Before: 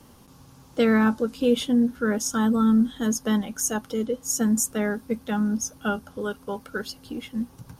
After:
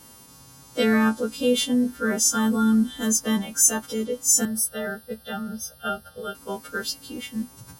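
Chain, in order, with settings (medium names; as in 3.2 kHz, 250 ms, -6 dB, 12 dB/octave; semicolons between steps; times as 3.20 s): partials quantised in pitch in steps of 2 st; 4.45–6.35 s: static phaser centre 1.5 kHz, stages 8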